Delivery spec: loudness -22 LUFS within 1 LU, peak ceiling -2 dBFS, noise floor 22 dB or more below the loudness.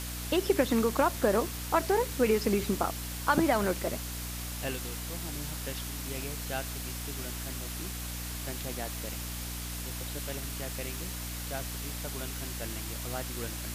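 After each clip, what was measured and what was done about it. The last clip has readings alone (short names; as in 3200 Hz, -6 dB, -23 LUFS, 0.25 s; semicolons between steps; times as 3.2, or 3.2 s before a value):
hum 60 Hz; harmonics up to 300 Hz; hum level -37 dBFS; noise floor -38 dBFS; noise floor target -54 dBFS; loudness -32.0 LUFS; peak -11.5 dBFS; loudness target -22.0 LUFS
-> notches 60/120/180/240/300 Hz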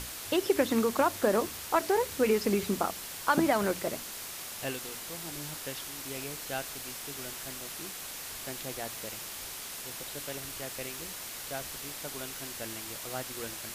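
hum none; noise floor -42 dBFS; noise floor target -55 dBFS
-> denoiser 13 dB, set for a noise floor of -42 dBFS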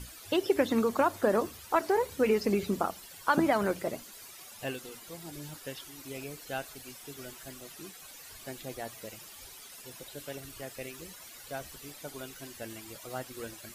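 noise floor -50 dBFS; noise floor target -55 dBFS
-> denoiser 6 dB, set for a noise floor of -50 dBFS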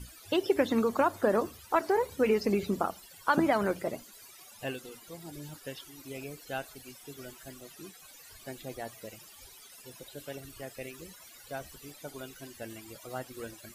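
noise floor -53 dBFS; noise floor target -54 dBFS
-> denoiser 6 dB, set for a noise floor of -53 dBFS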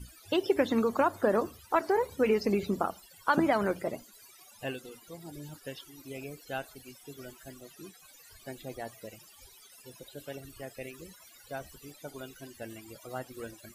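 noise floor -56 dBFS; loudness -31.5 LUFS; peak -12.5 dBFS; loudness target -22.0 LUFS
-> gain +9.5 dB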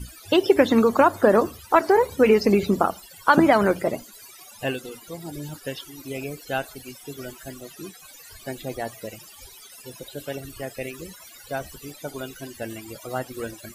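loudness -22.0 LUFS; peak -3.0 dBFS; noise floor -47 dBFS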